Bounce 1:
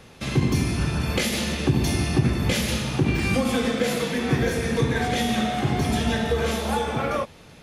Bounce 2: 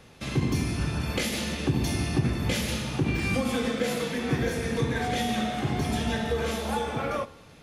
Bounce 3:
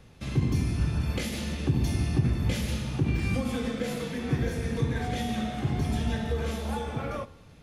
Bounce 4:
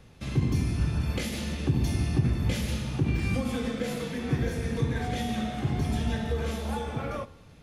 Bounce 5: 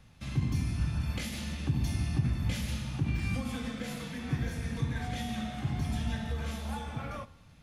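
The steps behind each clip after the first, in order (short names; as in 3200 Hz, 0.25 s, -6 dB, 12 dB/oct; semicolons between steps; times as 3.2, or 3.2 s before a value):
FDN reverb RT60 1 s, high-frequency decay 0.4×, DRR 16 dB; gain -4.5 dB
low shelf 170 Hz +11.5 dB; gain -6 dB
nothing audible
bell 420 Hz -10.5 dB 0.84 oct; gain -3.5 dB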